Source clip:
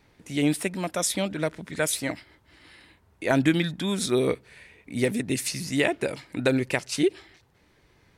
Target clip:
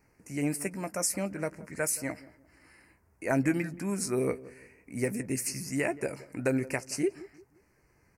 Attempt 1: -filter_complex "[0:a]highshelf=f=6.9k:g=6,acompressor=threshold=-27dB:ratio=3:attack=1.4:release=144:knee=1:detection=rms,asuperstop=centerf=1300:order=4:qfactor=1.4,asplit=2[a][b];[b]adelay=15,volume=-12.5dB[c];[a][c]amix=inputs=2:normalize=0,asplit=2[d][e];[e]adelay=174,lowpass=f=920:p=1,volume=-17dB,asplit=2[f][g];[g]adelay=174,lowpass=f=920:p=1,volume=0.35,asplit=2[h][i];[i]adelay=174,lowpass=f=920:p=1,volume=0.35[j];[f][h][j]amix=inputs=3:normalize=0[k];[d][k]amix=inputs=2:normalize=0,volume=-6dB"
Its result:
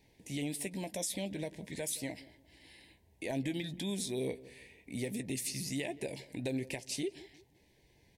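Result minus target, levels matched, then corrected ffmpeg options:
compressor: peak gain reduction +11 dB; 4000 Hz band +9.0 dB
-filter_complex "[0:a]asuperstop=centerf=3500:order=4:qfactor=1.4,highshelf=f=6.9k:g=6,asplit=2[a][b];[b]adelay=15,volume=-12.5dB[c];[a][c]amix=inputs=2:normalize=0,asplit=2[d][e];[e]adelay=174,lowpass=f=920:p=1,volume=-17dB,asplit=2[f][g];[g]adelay=174,lowpass=f=920:p=1,volume=0.35,asplit=2[h][i];[i]adelay=174,lowpass=f=920:p=1,volume=0.35[j];[f][h][j]amix=inputs=3:normalize=0[k];[d][k]amix=inputs=2:normalize=0,volume=-6dB"

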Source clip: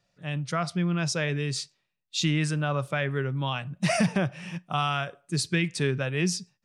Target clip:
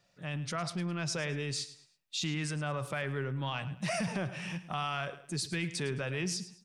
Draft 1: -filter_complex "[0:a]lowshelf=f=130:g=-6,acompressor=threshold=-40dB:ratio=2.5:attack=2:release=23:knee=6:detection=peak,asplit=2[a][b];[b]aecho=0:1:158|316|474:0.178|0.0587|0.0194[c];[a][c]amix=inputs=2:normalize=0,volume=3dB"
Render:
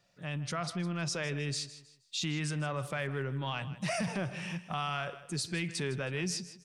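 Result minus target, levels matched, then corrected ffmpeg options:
echo 51 ms late
-filter_complex "[0:a]lowshelf=f=130:g=-6,acompressor=threshold=-40dB:ratio=2.5:attack=2:release=23:knee=6:detection=peak,asplit=2[a][b];[b]aecho=0:1:107|214|321:0.178|0.0587|0.0194[c];[a][c]amix=inputs=2:normalize=0,volume=3dB"

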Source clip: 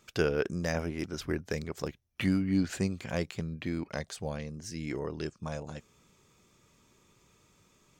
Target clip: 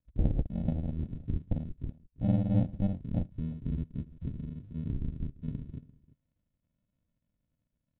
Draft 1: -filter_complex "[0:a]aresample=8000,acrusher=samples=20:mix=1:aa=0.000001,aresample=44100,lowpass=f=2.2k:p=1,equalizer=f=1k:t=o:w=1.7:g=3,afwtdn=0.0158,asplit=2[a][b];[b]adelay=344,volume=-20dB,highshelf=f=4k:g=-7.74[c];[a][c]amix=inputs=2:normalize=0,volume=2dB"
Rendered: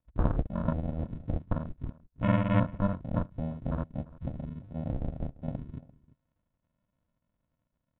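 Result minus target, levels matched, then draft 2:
1000 Hz band +13.0 dB
-filter_complex "[0:a]aresample=8000,acrusher=samples=20:mix=1:aa=0.000001,aresample=44100,lowpass=f=2.2k:p=1,equalizer=f=1k:t=o:w=1.7:g=-8.5,afwtdn=0.0158,asplit=2[a][b];[b]adelay=344,volume=-20dB,highshelf=f=4k:g=-7.74[c];[a][c]amix=inputs=2:normalize=0,volume=2dB"

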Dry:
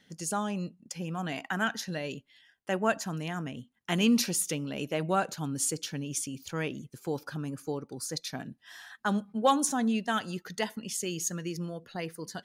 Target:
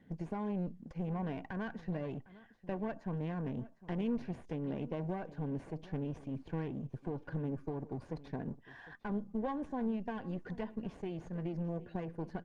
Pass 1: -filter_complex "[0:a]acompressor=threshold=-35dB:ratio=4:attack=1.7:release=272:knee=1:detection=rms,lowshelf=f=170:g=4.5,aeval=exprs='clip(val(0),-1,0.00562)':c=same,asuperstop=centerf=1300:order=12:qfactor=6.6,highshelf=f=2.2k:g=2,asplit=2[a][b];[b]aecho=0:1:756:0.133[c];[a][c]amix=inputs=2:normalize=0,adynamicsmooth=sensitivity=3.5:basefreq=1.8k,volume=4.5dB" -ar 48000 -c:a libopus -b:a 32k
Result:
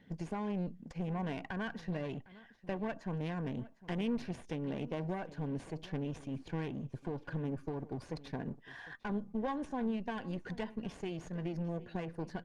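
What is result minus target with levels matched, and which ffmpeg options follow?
4000 Hz band +7.5 dB
-filter_complex "[0:a]acompressor=threshold=-35dB:ratio=4:attack=1.7:release=272:knee=1:detection=rms,lowshelf=f=170:g=4.5,aeval=exprs='clip(val(0),-1,0.00562)':c=same,asuperstop=centerf=1300:order=12:qfactor=6.6,highshelf=f=2.2k:g=-8,asplit=2[a][b];[b]aecho=0:1:756:0.133[c];[a][c]amix=inputs=2:normalize=0,adynamicsmooth=sensitivity=3.5:basefreq=1.8k,volume=4.5dB" -ar 48000 -c:a libopus -b:a 32k

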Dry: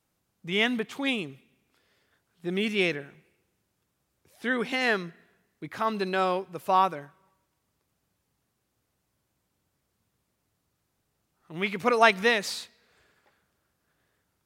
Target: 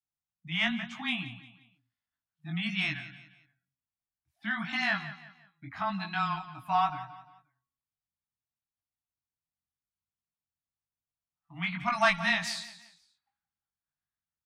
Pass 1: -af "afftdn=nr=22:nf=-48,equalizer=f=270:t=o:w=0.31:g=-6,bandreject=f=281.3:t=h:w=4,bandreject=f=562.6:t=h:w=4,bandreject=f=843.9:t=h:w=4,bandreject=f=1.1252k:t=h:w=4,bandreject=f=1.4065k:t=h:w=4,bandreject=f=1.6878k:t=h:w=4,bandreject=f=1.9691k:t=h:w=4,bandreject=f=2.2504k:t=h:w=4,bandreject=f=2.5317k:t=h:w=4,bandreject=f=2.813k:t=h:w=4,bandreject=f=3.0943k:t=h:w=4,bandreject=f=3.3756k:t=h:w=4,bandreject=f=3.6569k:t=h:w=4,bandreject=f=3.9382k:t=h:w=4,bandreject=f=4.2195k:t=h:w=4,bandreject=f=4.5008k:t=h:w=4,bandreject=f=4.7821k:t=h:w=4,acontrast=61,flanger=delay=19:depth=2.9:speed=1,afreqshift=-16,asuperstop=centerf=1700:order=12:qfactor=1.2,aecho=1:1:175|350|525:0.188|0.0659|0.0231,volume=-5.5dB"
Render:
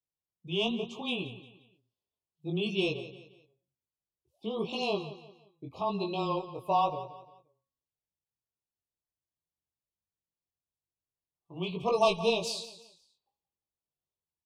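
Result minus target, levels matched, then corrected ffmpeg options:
500 Hz band +10.5 dB
-af "afftdn=nr=22:nf=-48,equalizer=f=270:t=o:w=0.31:g=-6,bandreject=f=281.3:t=h:w=4,bandreject=f=562.6:t=h:w=4,bandreject=f=843.9:t=h:w=4,bandreject=f=1.1252k:t=h:w=4,bandreject=f=1.4065k:t=h:w=4,bandreject=f=1.6878k:t=h:w=4,bandreject=f=1.9691k:t=h:w=4,bandreject=f=2.2504k:t=h:w=4,bandreject=f=2.5317k:t=h:w=4,bandreject=f=2.813k:t=h:w=4,bandreject=f=3.0943k:t=h:w=4,bandreject=f=3.3756k:t=h:w=4,bandreject=f=3.6569k:t=h:w=4,bandreject=f=3.9382k:t=h:w=4,bandreject=f=4.2195k:t=h:w=4,bandreject=f=4.5008k:t=h:w=4,bandreject=f=4.7821k:t=h:w=4,acontrast=61,flanger=delay=19:depth=2.9:speed=1,afreqshift=-16,asuperstop=centerf=450:order=12:qfactor=1.2,aecho=1:1:175|350|525:0.188|0.0659|0.0231,volume=-5.5dB"

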